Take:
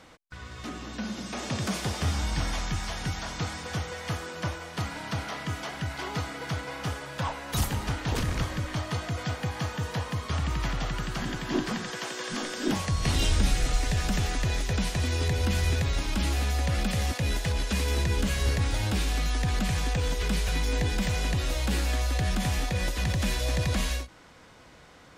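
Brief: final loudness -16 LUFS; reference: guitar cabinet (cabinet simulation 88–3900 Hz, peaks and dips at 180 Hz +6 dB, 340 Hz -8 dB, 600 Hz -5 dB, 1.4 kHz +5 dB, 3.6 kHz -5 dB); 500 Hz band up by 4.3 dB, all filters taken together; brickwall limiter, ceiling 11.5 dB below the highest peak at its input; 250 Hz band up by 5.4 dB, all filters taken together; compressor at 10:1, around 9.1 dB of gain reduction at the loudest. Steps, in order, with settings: peaking EQ 250 Hz +4 dB; peaking EQ 500 Hz +7.5 dB; compression 10:1, threshold -26 dBFS; peak limiter -28.5 dBFS; cabinet simulation 88–3900 Hz, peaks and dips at 180 Hz +6 dB, 340 Hz -8 dB, 600 Hz -5 dB, 1.4 kHz +5 dB, 3.6 kHz -5 dB; trim +22.5 dB

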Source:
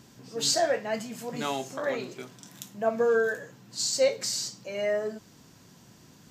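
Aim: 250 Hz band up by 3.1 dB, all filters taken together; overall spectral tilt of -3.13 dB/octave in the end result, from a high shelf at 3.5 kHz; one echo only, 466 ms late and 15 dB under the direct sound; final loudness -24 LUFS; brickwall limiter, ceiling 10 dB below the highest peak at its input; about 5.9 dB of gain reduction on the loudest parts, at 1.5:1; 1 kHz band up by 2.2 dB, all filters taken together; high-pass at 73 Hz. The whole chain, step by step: high-pass 73 Hz; peaking EQ 250 Hz +3.5 dB; peaking EQ 1 kHz +3.5 dB; treble shelf 3.5 kHz -4.5 dB; compression 1.5:1, threshold -35 dBFS; peak limiter -27.5 dBFS; delay 466 ms -15 dB; trim +13 dB

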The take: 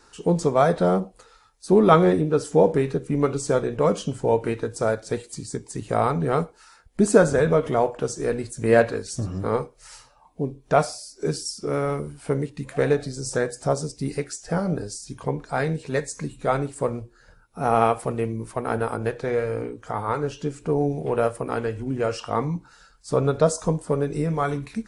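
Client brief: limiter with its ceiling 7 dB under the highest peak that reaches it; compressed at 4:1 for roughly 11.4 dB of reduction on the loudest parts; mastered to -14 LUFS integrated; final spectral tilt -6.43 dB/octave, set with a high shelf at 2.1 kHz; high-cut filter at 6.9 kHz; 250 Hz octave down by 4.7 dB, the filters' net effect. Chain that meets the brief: low-pass 6.9 kHz; peaking EQ 250 Hz -7 dB; treble shelf 2.1 kHz -4.5 dB; compression 4:1, threshold -26 dBFS; trim +19.5 dB; peak limiter -2 dBFS

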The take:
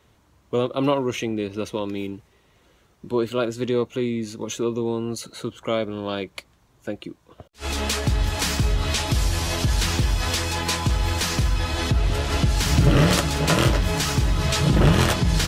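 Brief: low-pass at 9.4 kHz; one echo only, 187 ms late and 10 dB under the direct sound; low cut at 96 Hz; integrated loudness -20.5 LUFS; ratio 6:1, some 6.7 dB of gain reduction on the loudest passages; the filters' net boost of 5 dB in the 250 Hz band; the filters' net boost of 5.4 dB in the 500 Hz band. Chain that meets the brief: high-pass 96 Hz; low-pass 9.4 kHz; peaking EQ 250 Hz +5.5 dB; peaking EQ 500 Hz +5 dB; compression 6:1, threshold -18 dBFS; delay 187 ms -10 dB; trim +3.5 dB

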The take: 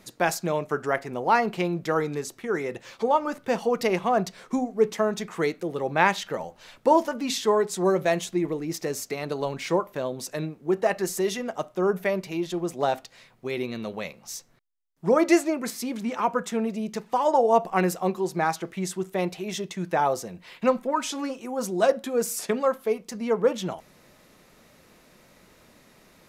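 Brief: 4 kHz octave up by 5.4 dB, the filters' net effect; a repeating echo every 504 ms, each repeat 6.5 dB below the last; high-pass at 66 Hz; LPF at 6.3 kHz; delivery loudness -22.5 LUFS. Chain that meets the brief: high-pass 66 Hz; low-pass 6.3 kHz; peaking EQ 4 kHz +7.5 dB; feedback delay 504 ms, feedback 47%, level -6.5 dB; trim +2.5 dB

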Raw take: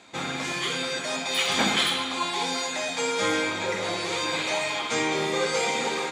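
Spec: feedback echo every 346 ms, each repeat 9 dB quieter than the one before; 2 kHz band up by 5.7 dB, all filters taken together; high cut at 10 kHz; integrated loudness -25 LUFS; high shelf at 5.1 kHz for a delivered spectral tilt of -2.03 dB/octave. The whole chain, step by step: low-pass 10 kHz; peaking EQ 2 kHz +7.5 dB; treble shelf 5.1 kHz -3.5 dB; feedback delay 346 ms, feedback 35%, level -9 dB; trim -2.5 dB

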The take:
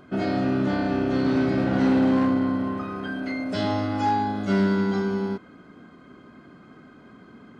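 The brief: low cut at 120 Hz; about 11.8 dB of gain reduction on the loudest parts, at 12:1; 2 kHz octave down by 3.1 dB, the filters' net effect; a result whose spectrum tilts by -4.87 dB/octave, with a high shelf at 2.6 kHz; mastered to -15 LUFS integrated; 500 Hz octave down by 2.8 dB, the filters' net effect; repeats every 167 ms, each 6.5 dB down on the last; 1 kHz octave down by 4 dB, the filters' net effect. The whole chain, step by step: high-pass 120 Hz; peaking EQ 500 Hz -3 dB; peaking EQ 1 kHz -4 dB; peaking EQ 2 kHz -5 dB; treble shelf 2.6 kHz +6.5 dB; compression 12:1, threshold -30 dBFS; feedback delay 167 ms, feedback 47%, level -6.5 dB; trim +19.5 dB

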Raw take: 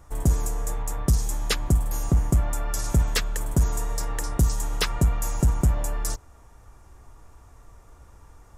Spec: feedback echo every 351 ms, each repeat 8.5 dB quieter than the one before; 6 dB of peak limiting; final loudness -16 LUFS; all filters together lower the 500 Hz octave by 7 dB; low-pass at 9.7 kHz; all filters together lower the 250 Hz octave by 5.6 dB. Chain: low-pass 9.7 kHz; peaking EQ 250 Hz -8 dB; peaking EQ 500 Hz -6.5 dB; peak limiter -17.5 dBFS; feedback delay 351 ms, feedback 38%, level -8.5 dB; trim +12 dB

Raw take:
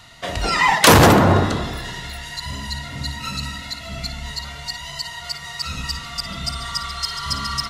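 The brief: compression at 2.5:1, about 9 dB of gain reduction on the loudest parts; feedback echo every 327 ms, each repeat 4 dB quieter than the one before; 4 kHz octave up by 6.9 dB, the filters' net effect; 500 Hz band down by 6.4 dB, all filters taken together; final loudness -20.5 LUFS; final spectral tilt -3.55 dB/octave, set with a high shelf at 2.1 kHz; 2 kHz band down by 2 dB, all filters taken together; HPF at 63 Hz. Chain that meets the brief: high-pass 63 Hz; peaking EQ 500 Hz -8.5 dB; peaking EQ 2 kHz -5.5 dB; treble shelf 2.1 kHz +3.5 dB; peaking EQ 4 kHz +6.5 dB; compression 2.5:1, threshold -19 dBFS; feedback delay 327 ms, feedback 63%, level -4 dB

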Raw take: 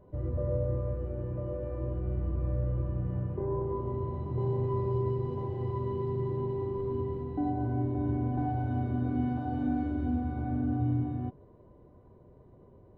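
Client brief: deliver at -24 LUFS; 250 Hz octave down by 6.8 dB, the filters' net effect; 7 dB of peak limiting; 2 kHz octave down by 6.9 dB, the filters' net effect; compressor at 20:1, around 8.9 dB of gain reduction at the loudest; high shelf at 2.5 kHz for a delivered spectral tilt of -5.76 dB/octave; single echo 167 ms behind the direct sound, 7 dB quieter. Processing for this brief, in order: peaking EQ 250 Hz -8.5 dB; peaking EQ 2 kHz -7.5 dB; treble shelf 2.5 kHz -7.5 dB; compression 20:1, threshold -36 dBFS; peak limiter -36.5 dBFS; delay 167 ms -7 dB; trim +21.5 dB

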